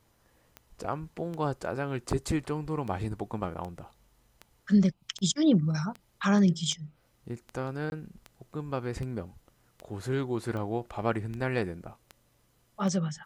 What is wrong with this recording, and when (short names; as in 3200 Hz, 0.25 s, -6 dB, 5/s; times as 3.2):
tick 78 rpm -26 dBFS
7.9–7.92 gap 21 ms